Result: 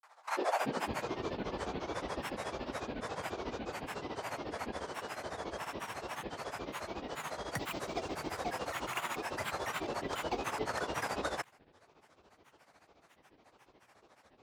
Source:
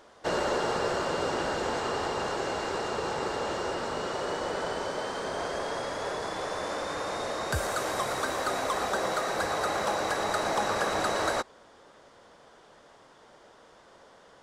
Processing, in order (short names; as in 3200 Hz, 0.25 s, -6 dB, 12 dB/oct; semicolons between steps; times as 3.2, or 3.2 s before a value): high-pass sweep 720 Hz -> 68 Hz, 0.4–1.08; grains 0.1 s, grains 14/s, spray 37 ms, pitch spread up and down by 12 st; gain -6 dB